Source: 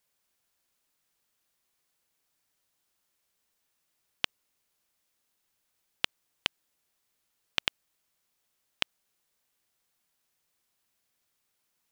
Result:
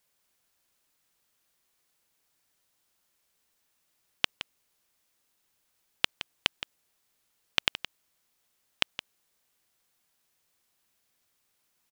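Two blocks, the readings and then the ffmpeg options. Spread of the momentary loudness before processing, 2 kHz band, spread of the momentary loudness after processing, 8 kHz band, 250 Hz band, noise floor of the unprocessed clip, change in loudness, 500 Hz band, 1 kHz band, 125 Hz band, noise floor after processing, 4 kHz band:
3 LU, +3.0 dB, 16 LU, +3.0 dB, +3.0 dB, -78 dBFS, +3.0 dB, +3.0 dB, +3.0 dB, +3.0 dB, -75 dBFS, +3.0 dB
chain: -af "aecho=1:1:168:0.237,volume=3dB"

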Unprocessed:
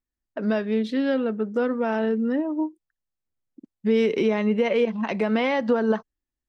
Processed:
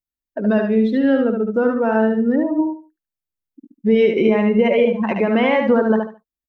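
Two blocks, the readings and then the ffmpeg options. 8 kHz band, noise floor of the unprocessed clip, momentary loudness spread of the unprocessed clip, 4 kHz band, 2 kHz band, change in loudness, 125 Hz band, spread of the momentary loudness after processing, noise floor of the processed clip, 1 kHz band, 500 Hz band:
n/a, under -85 dBFS, 7 LU, +3.0 dB, +6.0 dB, +6.5 dB, +7.0 dB, 8 LU, under -85 dBFS, +6.5 dB, +6.5 dB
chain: -filter_complex "[0:a]afftdn=nr=15:nf=-32,asplit=2[a][b];[b]aecho=0:1:73|146|219:0.596|0.137|0.0315[c];[a][c]amix=inputs=2:normalize=0,volume=5.5dB" -ar 44100 -c:a nellymoser

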